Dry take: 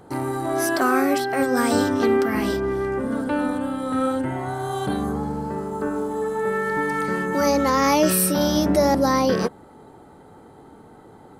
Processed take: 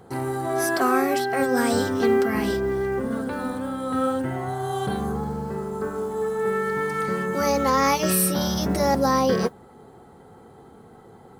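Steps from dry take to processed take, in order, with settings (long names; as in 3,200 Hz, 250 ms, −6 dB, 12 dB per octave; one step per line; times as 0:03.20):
noise that follows the level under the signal 34 dB
notch comb filter 300 Hz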